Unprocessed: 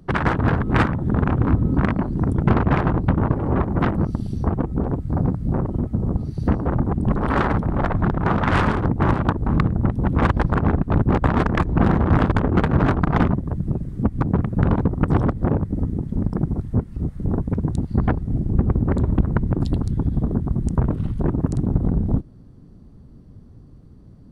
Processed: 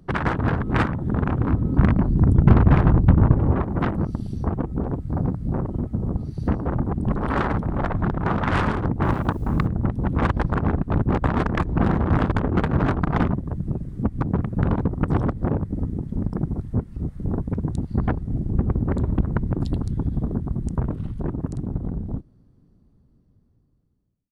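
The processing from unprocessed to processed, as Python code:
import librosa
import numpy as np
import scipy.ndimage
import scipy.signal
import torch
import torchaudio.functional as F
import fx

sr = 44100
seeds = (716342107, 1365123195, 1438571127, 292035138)

y = fx.fade_out_tail(x, sr, length_s=4.27)
y = fx.low_shelf(y, sr, hz=180.0, db=11.0, at=(1.79, 3.52))
y = fx.quant_dither(y, sr, seeds[0], bits=10, dither='triangular', at=(9.03, 9.66), fade=0.02)
y = y * librosa.db_to_amplitude(-3.0)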